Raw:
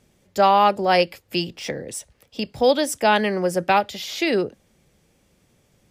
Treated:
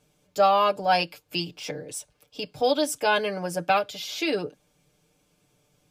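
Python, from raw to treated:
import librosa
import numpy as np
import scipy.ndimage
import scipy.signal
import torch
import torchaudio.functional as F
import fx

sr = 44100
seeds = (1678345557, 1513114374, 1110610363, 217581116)

y = fx.low_shelf(x, sr, hz=340.0, db=-4.5)
y = fx.notch(y, sr, hz=1900.0, q=5.5)
y = y + 0.79 * np.pad(y, (int(6.7 * sr / 1000.0), 0))[:len(y)]
y = y * 10.0 ** (-5.0 / 20.0)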